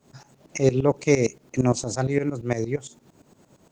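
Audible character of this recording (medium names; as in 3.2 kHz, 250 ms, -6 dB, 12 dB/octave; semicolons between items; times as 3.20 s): a quantiser's noise floor 12-bit, dither triangular; tremolo saw up 8.7 Hz, depth 85%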